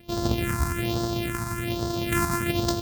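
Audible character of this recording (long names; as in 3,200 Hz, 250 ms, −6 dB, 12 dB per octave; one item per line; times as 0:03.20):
a buzz of ramps at a fixed pitch in blocks of 128 samples
phaser sweep stages 4, 1.2 Hz, lowest notch 500–2,300 Hz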